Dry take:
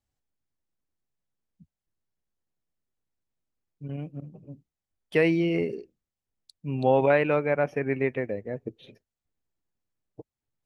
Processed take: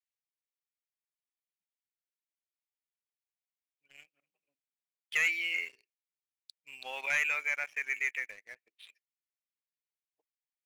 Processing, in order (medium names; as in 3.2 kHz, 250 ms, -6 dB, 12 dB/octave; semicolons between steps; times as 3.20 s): resonant high-pass 2.2 kHz, resonance Q 2.7; waveshaping leveller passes 2; trim -9 dB